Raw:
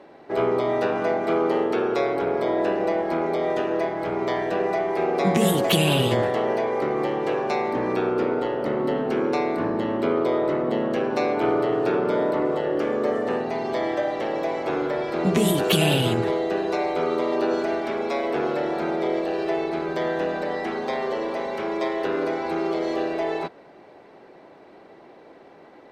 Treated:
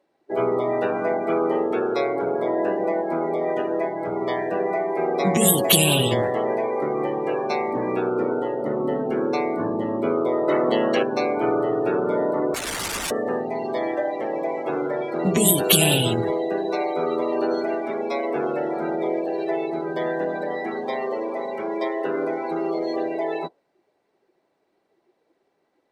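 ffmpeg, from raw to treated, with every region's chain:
-filter_complex "[0:a]asettb=1/sr,asplit=3[s0][s1][s2];[s0]atrim=end=10.484[s3];[s1]atrim=start=10.48:end=11.03,asetpts=PTS-STARTPTS,afade=t=in:d=0.004:c=qsin,afade=t=out:st=0.546:d=0.004:c=qsin,lowpass=6400,acontrast=47,aemphasis=mode=production:type=bsi[s4];[s2]atrim=start=11.026[s5];[s3][s4]acrossfade=d=0.004:c1=hsin:c2=qsin[s6];[s6][s5]acrossfade=d=0.004:c1=qsin:c2=hsin,asettb=1/sr,asplit=3[s7][s8][s9];[s7]atrim=end=12.544[s10];[s8]atrim=start=12.54:end=13.11,asetpts=PTS-STARTPTS,afade=t=in:d=0.004:c=qsin,afade=t=out:st=0.566:d=0.004:c=qsin,highpass=f=58:w=0.5412,highpass=f=58:w=1.3066,aeval=exprs='(mod(15*val(0)+1,2)-1)/15':c=same[s11];[s9]atrim=start=13.106[s12];[s10][s11]acrossfade=d=0.004:c1=hsin:c2=qsin[s13];[s13][s12]acrossfade=d=0.004:c1=qsin:c2=hsin,equalizer=f=9800:w=0.5:g=7,afftdn=nr=23:nf=-30,highshelf=f=5600:g=10.5"

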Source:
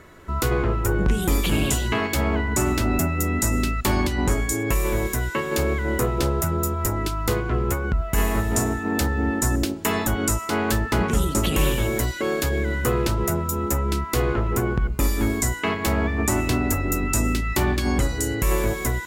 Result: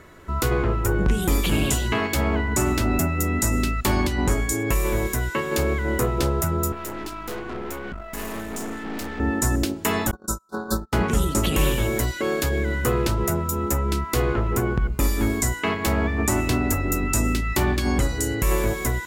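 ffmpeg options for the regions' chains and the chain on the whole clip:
-filter_complex "[0:a]asettb=1/sr,asplit=3[s0][s1][s2];[s0]atrim=end=6.724[s3];[s1]atrim=start=6.72:end=9.2,asetpts=PTS-STARTPTS,afade=t=in:d=0.004:c=qsin,afade=t=out:st=2.476:d=0.004:c=qsin,lowshelf=f=160:t=q:w=1.5:g=-10,aeval=exprs='(tanh(28.2*val(0)+0.7)-tanh(0.7))/28.2':c=same[s4];[s2]atrim=start=9.196[s5];[s3][s4]acrossfade=d=0.004:c1=hsin:c2=qsin[s6];[s6][s5]acrossfade=d=0.004:c1=qsin:c2=hsin,asettb=1/sr,asplit=3[s7][s8][s9];[s7]atrim=end=10.114[s10];[s8]atrim=start=10.11:end=10.93,asetpts=PTS-STARTPTS,afade=t=in:d=0.004:c=qsin,afade=t=out:st=0.816:d=0.004:c=qsin,aecho=1:1:5.3:0.7,atrim=end_sample=36162,agate=range=0.0158:threshold=0.1:ratio=16:release=100:detection=peak,asuperstop=centerf=2400:order=20:qfactor=1.2[s11];[s9]atrim=start=10.926[s12];[s10][s11]acrossfade=d=0.004:c1=hsin:c2=qsin[s13];[s13][s12]acrossfade=d=0.004:c1=qsin:c2=hsin"

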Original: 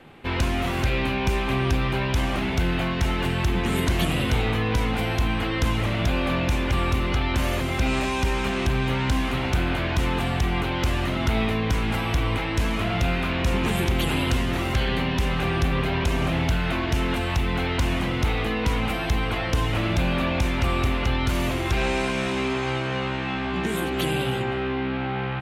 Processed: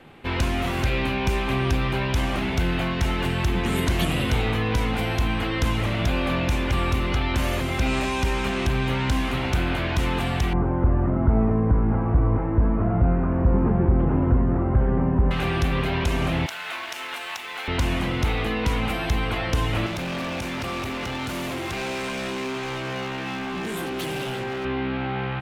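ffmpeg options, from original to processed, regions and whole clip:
-filter_complex "[0:a]asettb=1/sr,asplit=3[s0][s1][s2];[s0]atrim=end=10.534[s3];[s1]atrim=start=10.53:end=15.31,asetpts=PTS-STARTPTS,afade=t=in:d=0.004:c=qsin,afade=t=out:st=4.776:d=0.004:c=qsin,lowpass=f=1400:w=0.5412,lowpass=f=1400:w=1.3066,tiltshelf=f=750:g=5[s4];[s2]atrim=start=15.306[s5];[s3][s4]acrossfade=d=0.004:c1=hsin:c2=qsin[s6];[s6][s5]acrossfade=d=0.004:c1=qsin:c2=hsin,asettb=1/sr,asplit=3[s7][s8][s9];[s7]atrim=end=16.464[s10];[s8]atrim=start=16.46:end=17.68,asetpts=PTS-STARTPTS,afade=t=in:d=0.004:c=qsin,afade=t=out:st=1.216:d=0.004:c=qsin,highpass=900,aeval=exprs='sgn(val(0))*max(abs(val(0))-0.00531,0)':c=same[s11];[s9]atrim=start=17.676[s12];[s10][s11]acrossfade=d=0.004:c1=hsin:c2=qsin[s13];[s13][s12]acrossfade=d=0.004:c1=qsin:c2=hsin,asettb=1/sr,asplit=3[s14][s15][s16];[s14]atrim=end=19.864[s17];[s15]atrim=start=19.86:end=24.65,asetpts=PTS-STARTPTS,afade=t=in:d=0.004:c=qsin,afade=t=out:st=4.786:d=0.004:c=qsin,highpass=130,volume=21.1,asoftclip=hard,volume=0.0473[s18];[s16]atrim=start=24.646[s19];[s17][s18]acrossfade=d=0.004:c1=hsin:c2=qsin[s20];[s20][s19]acrossfade=d=0.004:c1=qsin:c2=hsin"

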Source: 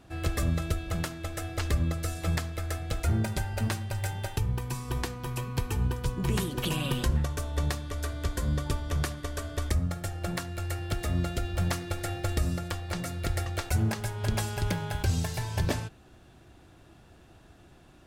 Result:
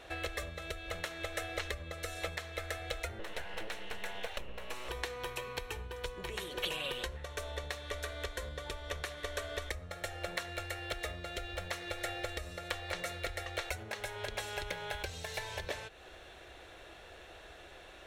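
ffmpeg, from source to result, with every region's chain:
-filter_complex "[0:a]asettb=1/sr,asplit=3[s0][s1][s2];[s0]atrim=end=3.194[s3];[s1]atrim=start=3.19:end=4.89,asetpts=PTS-STARTPTS,afade=t=in:d=0.004:c=qsin,afade=t=out:st=1.696:d=0.004:c=qsin,bass=f=250:g=1,treble=f=4000:g=-4,aeval=exprs='val(0)+0.00224*sin(2*PI*2800*n/s)':c=same,aeval=exprs='abs(val(0))':c=same[s4];[s2]atrim=start=4.886[s5];[s3][s4]acrossfade=d=0.004:c1=hsin:c2=qsin[s6];[s6][s5]acrossfade=d=0.004:c1=qsin:c2=hsin,bandreject=f=4800:w=6.7,acompressor=threshold=0.0112:ratio=6,equalizer=f=125:t=o:w=1:g=-12,equalizer=f=250:t=o:w=1:g=-11,equalizer=f=500:t=o:w=1:g=11,equalizer=f=2000:t=o:w=1:g=9,equalizer=f=4000:t=o:w=1:g=8,volume=1.12"

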